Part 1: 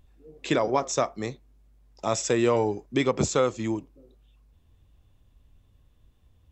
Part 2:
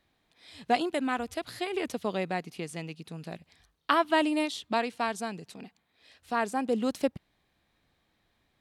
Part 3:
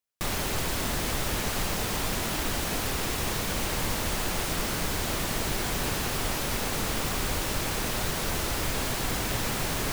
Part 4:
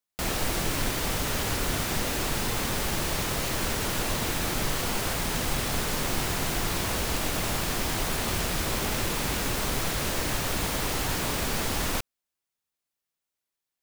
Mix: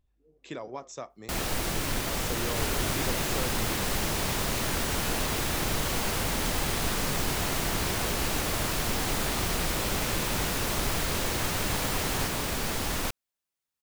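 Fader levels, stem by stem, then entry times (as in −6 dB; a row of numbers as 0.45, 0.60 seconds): −14.5 dB, muted, −4.5 dB, −2.0 dB; 0.00 s, muted, 2.35 s, 1.10 s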